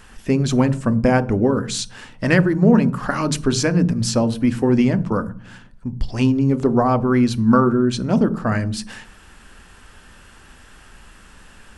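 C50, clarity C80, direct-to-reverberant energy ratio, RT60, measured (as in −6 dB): 18.5 dB, 22.5 dB, 11.5 dB, 0.40 s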